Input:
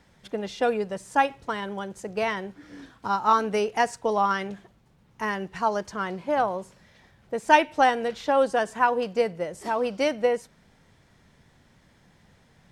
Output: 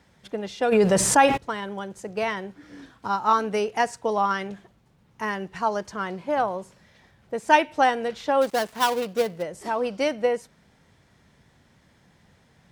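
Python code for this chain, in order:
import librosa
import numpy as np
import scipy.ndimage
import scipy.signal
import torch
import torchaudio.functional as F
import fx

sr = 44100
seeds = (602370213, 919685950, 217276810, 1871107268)

y = fx.dead_time(x, sr, dead_ms=0.17, at=(8.41, 9.41), fade=0.02)
y = scipy.signal.sosfilt(scipy.signal.butter(2, 41.0, 'highpass', fs=sr, output='sos'), y)
y = fx.env_flatten(y, sr, amount_pct=70, at=(0.71, 1.36), fade=0.02)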